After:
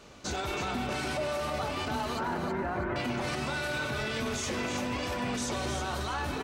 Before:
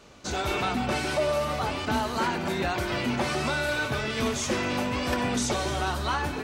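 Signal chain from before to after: 2.19–2.96 s: low-pass 1.8 kHz 24 dB/octave; peak limiter -25 dBFS, peak gain reduction 10 dB; feedback delay 324 ms, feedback 32%, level -7 dB

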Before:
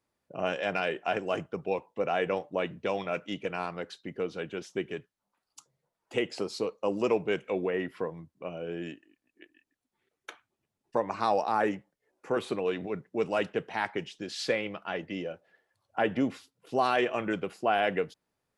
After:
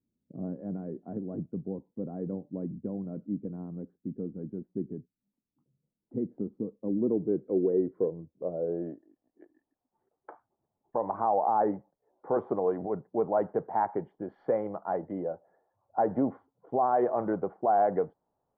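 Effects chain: low-pass sweep 240 Hz -> 820 Hz, 6.74–9.51 s; Savitzky-Golay filter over 41 samples; peak limiter -17 dBFS, peak gain reduction 7.5 dB

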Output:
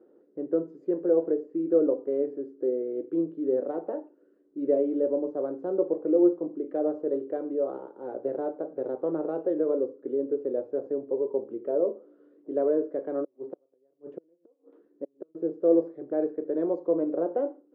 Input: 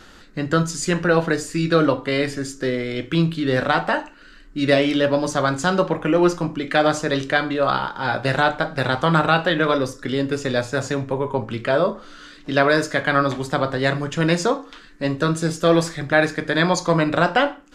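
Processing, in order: 13.24–15.35 s: inverted gate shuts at -13 dBFS, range -40 dB; Butterworth band-pass 410 Hz, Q 1.9; trim -2 dB

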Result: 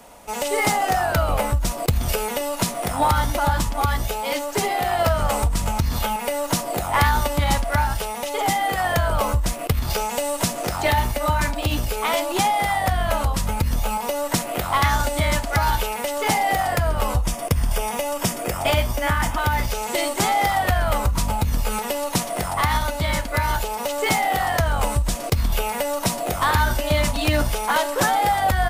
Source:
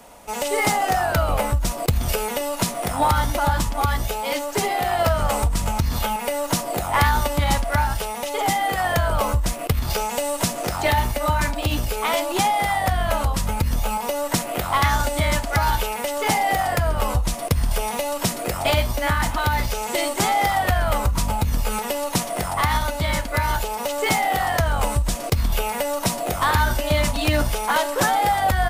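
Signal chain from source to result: 17.22–19.69 s: band-stop 4.1 kHz, Q 5.9

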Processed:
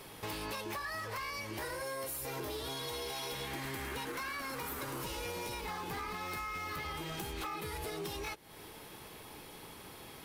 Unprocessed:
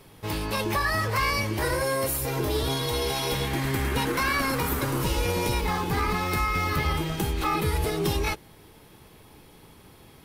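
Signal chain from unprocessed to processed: bass shelf 260 Hz -10.5 dB; compression 16:1, threshold -40 dBFS, peak gain reduction 18.5 dB; hard clipper -38.5 dBFS, distortion -17 dB; trim +4 dB

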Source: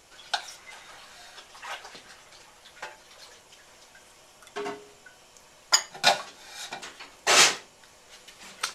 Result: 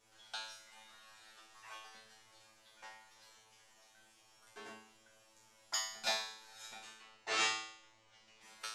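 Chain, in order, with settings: 6.94–8.41 s: distance through air 95 m; feedback comb 110 Hz, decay 0.64 s, harmonics all, mix 100%; trim +1 dB

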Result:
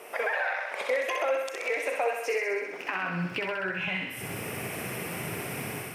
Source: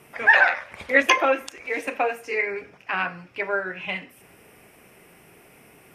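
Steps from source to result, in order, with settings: crackle 120 per s -54 dBFS; level rider gain up to 11 dB; peak limiter -14 dBFS, peak gain reduction 12.5 dB; compression, threshold -36 dBFS, peak gain reduction 16 dB; high-pass sweep 510 Hz -> 110 Hz, 2.50–3.57 s; on a send: thinning echo 64 ms, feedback 70%, high-pass 550 Hz, level -4 dB; on the sum: trim +4.5 dB

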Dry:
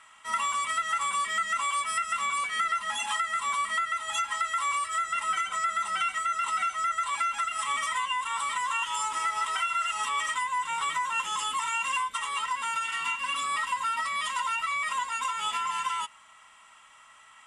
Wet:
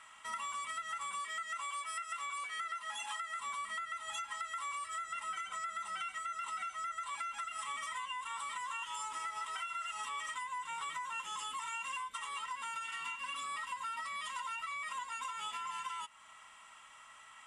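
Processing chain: 1.19–3.40 s: high-pass 340 Hz 12 dB/octave; compression 2.5:1, threshold -41 dBFS, peak gain reduction 11.5 dB; trim -2 dB

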